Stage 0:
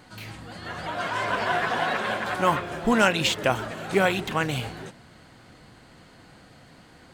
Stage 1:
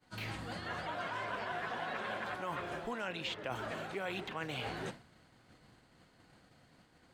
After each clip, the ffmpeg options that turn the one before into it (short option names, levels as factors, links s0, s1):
-filter_complex "[0:a]acrossover=split=320|4400[s0][s1][s2];[s0]acompressor=threshold=0.00794:ratio=4[s3];[s1]acompressor=threshold=0.0398:ratio=4[s4];[s2]acompressor=threshold=0.00141:ratio=4[s5];[s3][s4][s5]amix=inputs=3:normalize=0,agate=range=0.0224:threshold=0.01:ratio=3:detection=peak,areverse,acompressor=threshold=0.0112:ratio=6,areverse,volume=1.26"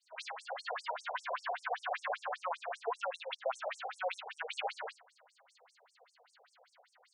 -af "afftfilt=real='re*between(b*sr/1024,580*pow(7700/580,0.5+0.5*sin(2*PI*5.1*pts/sr))/1.41,580*pow(7700/580,0.5+0.5*sin(2*PI*5.1*pts/sr))*1.41)':imag='im*between(b*sr/1024,580*pow(7700/580,0.5+0.5*sin(2*PI*5.1*pts/sr))/1.41,580*pow(7700/580,0.5+0.5*sin(2*PI*5.1*pts/sr))*1.41)':win_size=1024:overlap=0.75,volume=2.51"